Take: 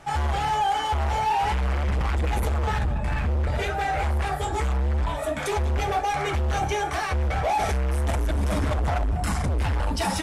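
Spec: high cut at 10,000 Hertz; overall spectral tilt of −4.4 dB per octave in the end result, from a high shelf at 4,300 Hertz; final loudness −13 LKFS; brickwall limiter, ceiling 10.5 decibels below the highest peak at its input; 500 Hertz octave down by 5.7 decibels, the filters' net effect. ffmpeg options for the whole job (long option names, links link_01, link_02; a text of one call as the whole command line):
ffmpeg -i in.wav -af "lowpass=10000,equalizer=frequency=500:width_type=o:gain=-8,highshelf=frequency=4300:gain=8.5,volume=17.5dB,alimiter=limit=-6dB:level=0:latency=1" out.wav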